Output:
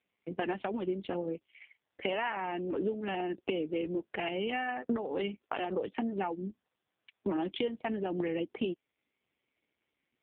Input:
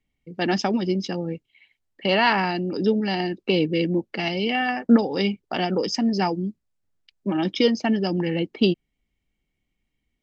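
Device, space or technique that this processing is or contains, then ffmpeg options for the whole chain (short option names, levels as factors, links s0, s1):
voicemail: -af "highpass=320,lowpass=3100,acompressor=threshold=0.0158:ratio=10,volume=2.24" -ar 8000 -c:a libopencore_amrnb -b:a 5150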